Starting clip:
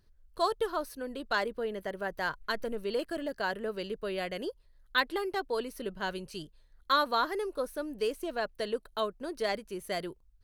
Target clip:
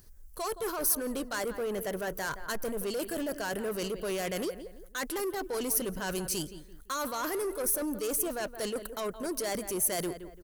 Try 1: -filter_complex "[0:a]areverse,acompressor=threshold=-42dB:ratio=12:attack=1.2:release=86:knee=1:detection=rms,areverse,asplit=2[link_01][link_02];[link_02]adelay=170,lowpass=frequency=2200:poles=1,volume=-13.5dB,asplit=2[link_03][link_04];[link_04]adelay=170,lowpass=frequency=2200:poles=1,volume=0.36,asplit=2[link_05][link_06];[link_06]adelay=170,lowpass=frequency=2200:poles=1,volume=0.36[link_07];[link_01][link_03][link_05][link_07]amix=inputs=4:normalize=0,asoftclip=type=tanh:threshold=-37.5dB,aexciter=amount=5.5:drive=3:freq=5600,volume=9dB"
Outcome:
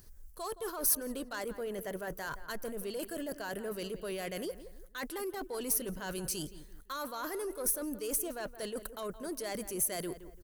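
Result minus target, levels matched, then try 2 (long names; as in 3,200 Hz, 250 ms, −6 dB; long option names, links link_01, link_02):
downward compressor: peak gain reduction +8 dB
-filter_complex "[0:a]areverse,acompressor=threshold=-33.5dB:ratio=12:attack=1.2:release=86:knee=1:detection=rms,areverse,asplit=2[link_01][link_02];[link_02]adelay=170,lowpass=frequency=2200:poles=1,volume=-13.5dB,asplit=2[link_03][link_04];[link_04]adelay=170,lowpass=frequency=2200:poles=1,volume=0.36,asplit=2[link_05][link_06];[link_06]adelay=170,lowpass=frequency=2200:poles=1,volume=0.36[link_07];[link_01][link_03][link_05][link_07]amix=inputs=4:normalize=0,asoftclip=type=tanh:threshold=-37.5dB,aexciter=amount=5.5:drive=3:freq=5600,volume=9dB"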